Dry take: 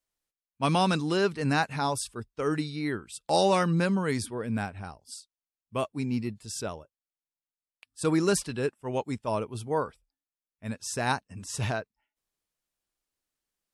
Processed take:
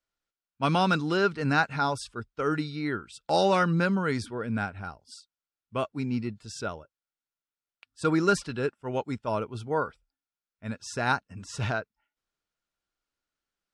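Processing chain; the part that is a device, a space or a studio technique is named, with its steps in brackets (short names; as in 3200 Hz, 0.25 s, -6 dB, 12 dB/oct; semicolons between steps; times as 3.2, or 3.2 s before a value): inside a cardboard box (LPF 5700 Hz 12 dB/oct; small resonant body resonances 1400 Hz, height 11 dB, ringing for 25 ms)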